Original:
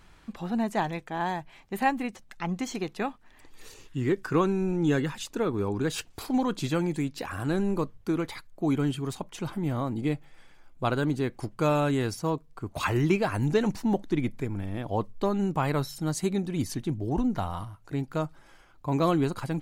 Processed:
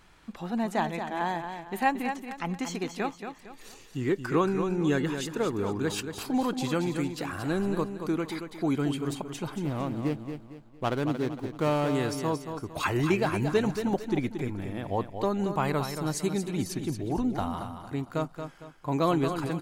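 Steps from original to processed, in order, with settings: 9.59–11.95 s: median filter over 25 samples; bass shelf 150 Hz -6 dB; feedback delay 228 ms, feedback 36%, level -8 dB

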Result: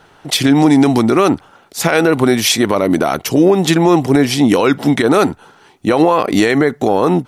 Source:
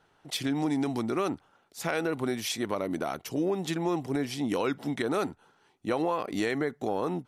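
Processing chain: loudness maximiser +20 dB; trim -1 dB

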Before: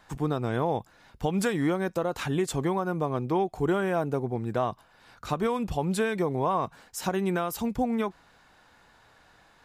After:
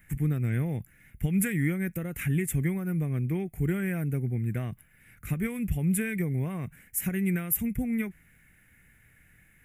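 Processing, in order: FFT filter 160 Hz 0 dB, 1 kHz -29 dB, 2.1 kHz +2 dB, 4.3 kHz -28 dB, 11 kHz +7 dB; trim +5.5 dB

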